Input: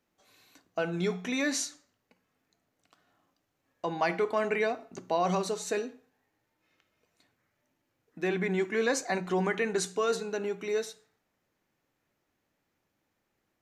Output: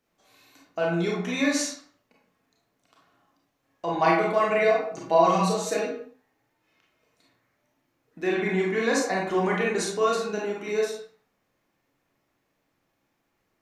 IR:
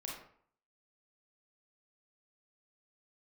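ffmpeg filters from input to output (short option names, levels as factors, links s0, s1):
-filter_complex "[0:a]asettb=1/sr,asplit=3[s0][s1][s2];[s0]atrim=end=3.934[s3];[s1]atrim=start=3.93:end=5.86,asetpts=PTS-STARTPTS,afade=t=in:d=0.004:c=qsin,afade=t=out:st=1.926:d=0.004:c=qsin,aecho=1:1:6.2:0.71,atrim=end_sample=85113[s4];[s2]atrim=start=5.856[s5];[s3][s4]acrossfade=d=0.004:c1=hsin:c2=qsin[s6];[s6][s5]acrossfade=d=0.004:c1=qsin:c2=hsin[s7];[1:a]atrim=start_sample=2205,afade=t=out:st=0.33:d=0.01,atrim=end_sample=14994[s8];[s7][s8]afir=irnorm=-1:irlink=0,volume=2"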